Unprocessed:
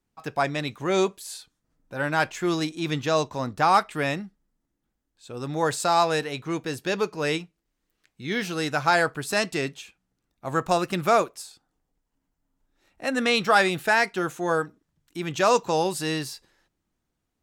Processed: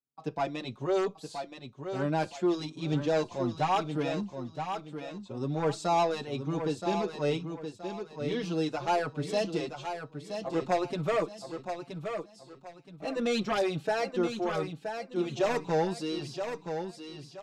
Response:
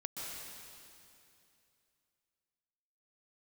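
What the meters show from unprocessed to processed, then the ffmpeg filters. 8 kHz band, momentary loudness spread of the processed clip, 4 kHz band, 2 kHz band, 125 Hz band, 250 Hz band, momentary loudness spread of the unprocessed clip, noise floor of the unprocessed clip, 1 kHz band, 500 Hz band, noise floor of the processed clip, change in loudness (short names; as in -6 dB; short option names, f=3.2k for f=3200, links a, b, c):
-12.0 dB, 12 LU, -9.0 dB, -13.0 dB, -2.5 dB, -2.5 dB, 16 LU, -80 dBFS, -7.5 dB, -4.0 dB, -55 dBFS, -7.0 dB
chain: -filter_complex "[0:a]highpass=100,agate=range=-18dB:threshold=-54dB:ratio=16:detection=peak,lowpass=4.1k,equalizer=f=1.8k:w=1.1:g=-14,aeval=exprs='0.251*sin(PI/2*2*val(0)/0.251)':c=same,aecho=1:1:973|1946|2919|3892:0.422|0.131|0.0405|0.0126,asplit=2[a][b];[b]adelay=4.9,afreqshift=1.1[c];[a][c]amix=inputs=2:normalize=1,volume=-8dB"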